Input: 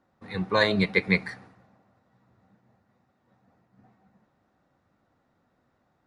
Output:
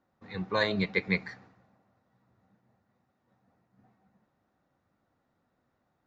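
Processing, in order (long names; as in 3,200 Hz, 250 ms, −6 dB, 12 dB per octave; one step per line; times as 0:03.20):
downsampling to 16,000 Hz
level −5.5 dB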